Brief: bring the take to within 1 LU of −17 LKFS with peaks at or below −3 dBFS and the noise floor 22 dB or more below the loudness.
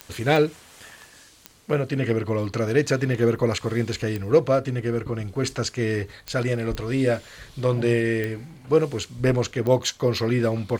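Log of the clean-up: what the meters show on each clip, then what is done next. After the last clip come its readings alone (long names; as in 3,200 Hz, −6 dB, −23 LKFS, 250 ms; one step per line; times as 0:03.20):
number of clicks 8; integrated loudness −24.0 LKFS; sample peak −5.5 dBFS; target loudness −17.0 LKFS
→ click removal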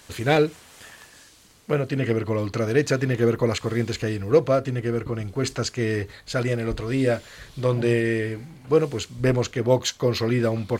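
number of clicks 0; integrated loudness −24.0 LKFS; sample peak −5.5 dBFS; target loudness −17.0 LKFS
→ level +7 dB
brickwall limiter −3 dBFS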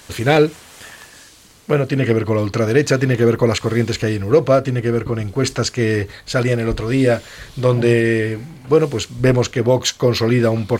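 integrated loudness −17.5 LKFS; sample peak −3.0 dBFS; background noise floor −44 dBFS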